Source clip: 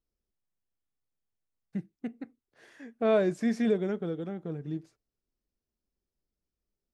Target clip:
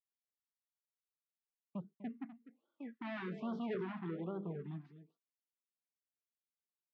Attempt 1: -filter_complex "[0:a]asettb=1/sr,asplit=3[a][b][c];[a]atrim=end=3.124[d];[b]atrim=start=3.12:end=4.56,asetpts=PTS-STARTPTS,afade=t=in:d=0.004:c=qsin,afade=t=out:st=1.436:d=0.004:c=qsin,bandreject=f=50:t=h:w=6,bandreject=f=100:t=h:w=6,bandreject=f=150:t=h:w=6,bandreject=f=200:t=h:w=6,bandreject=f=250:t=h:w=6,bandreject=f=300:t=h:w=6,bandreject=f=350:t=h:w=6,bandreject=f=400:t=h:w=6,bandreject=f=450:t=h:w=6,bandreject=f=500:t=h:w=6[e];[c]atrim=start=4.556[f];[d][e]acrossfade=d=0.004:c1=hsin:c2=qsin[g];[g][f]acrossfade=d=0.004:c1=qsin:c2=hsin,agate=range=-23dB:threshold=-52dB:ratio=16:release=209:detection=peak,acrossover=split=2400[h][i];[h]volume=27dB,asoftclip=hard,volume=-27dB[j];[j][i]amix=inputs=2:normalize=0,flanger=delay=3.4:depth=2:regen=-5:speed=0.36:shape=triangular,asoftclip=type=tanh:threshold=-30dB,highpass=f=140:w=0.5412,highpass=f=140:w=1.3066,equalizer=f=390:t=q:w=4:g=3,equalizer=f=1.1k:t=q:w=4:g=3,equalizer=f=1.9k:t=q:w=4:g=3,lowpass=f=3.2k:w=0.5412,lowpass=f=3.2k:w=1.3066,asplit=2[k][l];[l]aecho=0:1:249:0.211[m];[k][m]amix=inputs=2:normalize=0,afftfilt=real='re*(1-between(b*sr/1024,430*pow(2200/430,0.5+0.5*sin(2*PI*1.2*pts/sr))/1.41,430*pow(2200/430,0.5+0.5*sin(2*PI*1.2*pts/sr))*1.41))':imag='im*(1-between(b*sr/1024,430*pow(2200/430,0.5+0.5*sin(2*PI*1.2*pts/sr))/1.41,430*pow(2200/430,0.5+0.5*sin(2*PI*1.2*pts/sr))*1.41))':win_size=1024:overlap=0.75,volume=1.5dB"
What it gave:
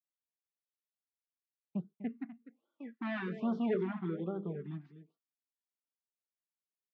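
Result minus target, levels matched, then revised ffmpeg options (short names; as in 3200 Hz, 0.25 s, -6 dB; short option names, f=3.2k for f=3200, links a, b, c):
soft clip: distortion -10 dB
-filter_complex "[0:a]asettb=1/sr,asplit=3[a][b][c];[a]atrim=end=3.124[d];[b]atrim=start=3.12:end=4.56,asetpts=PTS-STARTPTS,afade=t=in:d=0.004:c=qsin,afade=t=out:st=1.436:d=0.004:c=qsin,bandreject=f=50:t=h:w=6,bandreject=f=100:t=h:w=6,bandreject=f=150:t=h:w=6,bandreject=f=200:t=h:w=6,bandreject=f=250:t=h:w=6,bandreject=f=300:t=h:w=6,bandreject=f=350:t=h:w=6,bandreject=f=400:t=h:w=6,bandreject=f=450:t=h:w=6,bandreject=f=500:t=h:w=6[e];[c]atrim=start=4.556[f];[d][e]acrossfade=d=0.004:c1=hsin:c2=qsin[g];[g][f]acrossfade=d=0.004:c1=qsin:c2=hsin,agate=range=-23dB:threshold=-52dB:ratio=16:release=209:detection=peak,acrossover=split=2400[h][i];[h]volume=27dB,asoftclip=hard,volume=-27dB[j];[j][i]amix=inputs=2:normalize=0,flanger=delay=3.4:depth=2:regen=-5:speed=0.36:shape=triangular,asoftclip=type=tanh:threshold=-39.5dB,highpass=f=140:w=0.5412,highpass=f=140:w=1.3066,equalizer=f=390:t=q:w=4:g=3,equalizer=f=1.1k:t=q:w=4:g=3,equalizer=f=1.9k:t=q:w=4:g=3,lowpass=f=3.2k:w=0.5412,lowpass=f=3.2k:w=1.3066,asplit=2[k][l];[l]aecho=0:1:249:0.211[m];[k][m]amix=inputs=2:normalize=0,afftfilt=real='re*(1-between(b*sr/1024,430*pow(2200/430,0.5+0.5*sin(2*PI*1.2*pts/sr))/1.41,430*pow(2200/430,0.5+0.5*sin(2*PI*1.2*pts/sr))*1.41))':imag='im*(1-between(b*sr/1024,430*pow(2200/430,0.5+0.5*sin(2*PI*1.2*pts/sr))/1.41,430*pow(2200/430,0.5+0.5*sin(2*PI*1.2*pts/sr))*1.41))':win_size=1024:overlap=0.75,volume=1.5dB"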